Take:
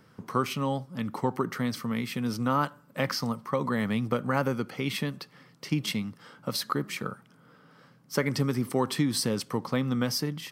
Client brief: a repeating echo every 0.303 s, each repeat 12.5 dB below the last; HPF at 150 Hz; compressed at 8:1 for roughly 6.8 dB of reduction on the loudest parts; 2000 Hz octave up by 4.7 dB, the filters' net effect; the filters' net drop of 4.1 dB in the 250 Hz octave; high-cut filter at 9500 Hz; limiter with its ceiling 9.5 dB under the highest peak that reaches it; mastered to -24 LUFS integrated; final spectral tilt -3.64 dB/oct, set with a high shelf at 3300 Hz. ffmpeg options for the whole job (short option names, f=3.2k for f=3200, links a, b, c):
-af "highpass=150,lowpass=9.5k,equalizer=f=250:t=o:g=-4,equalizer=f=2k:t=o:g=4,highshelf=f=3.3k:g=6,acompressor=threshold=-29dB:ratio=8,alimiter=level_in=1.5dB:limit=-24dB:level=0:latency=1,volume=-1.5dB,aecho=1:1:303|606|909:0.237|0.0569|0.0137,volume=12.5dB"